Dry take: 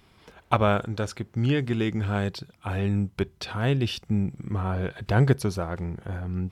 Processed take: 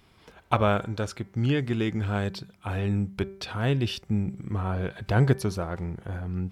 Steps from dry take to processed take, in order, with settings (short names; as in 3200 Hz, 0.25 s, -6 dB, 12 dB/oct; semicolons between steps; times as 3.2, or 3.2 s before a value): de-hum 194.4 Hz, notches 12; gain -1 dB